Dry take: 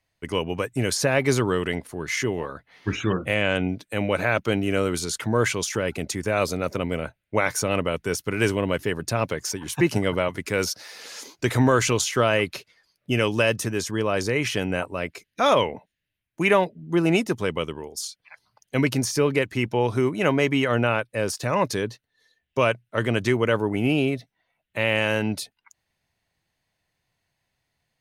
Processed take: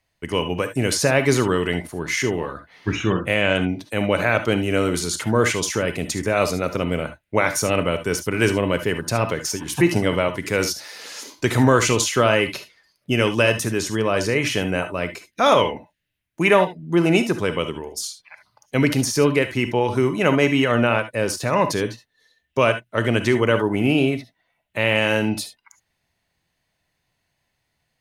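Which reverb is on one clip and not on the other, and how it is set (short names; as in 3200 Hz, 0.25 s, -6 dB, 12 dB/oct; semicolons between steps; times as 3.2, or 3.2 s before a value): non-linear reverb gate 90 ms rising, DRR 9 dB; gain +3 dB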